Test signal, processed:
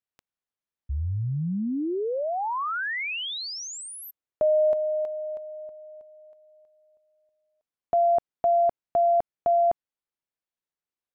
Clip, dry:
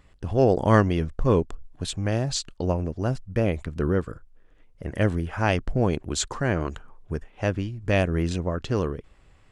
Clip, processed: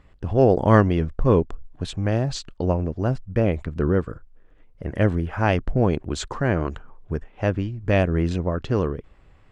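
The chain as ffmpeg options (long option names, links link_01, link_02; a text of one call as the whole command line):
ffmpeg -i in.wav -af "lowpass=frequency=2300:poles=1,volume=3dB" out.wav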